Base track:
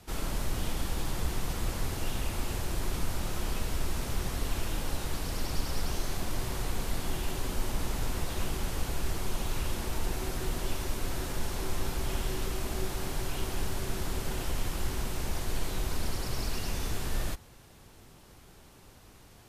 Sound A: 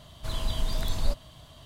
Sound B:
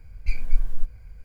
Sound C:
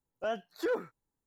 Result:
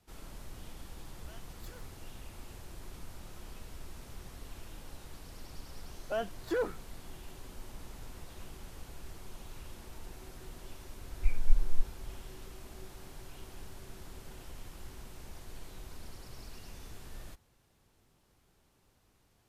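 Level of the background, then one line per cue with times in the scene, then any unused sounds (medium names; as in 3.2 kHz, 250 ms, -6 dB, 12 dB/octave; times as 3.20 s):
base track -15 dB
1.04 s: add C -5.5 dB + differentiator
5.88 s: add C -0.5 dB + tape noise reduction on one side only decoder only
10.97 s: add B -4 dB + distance through air 490 m
not used: A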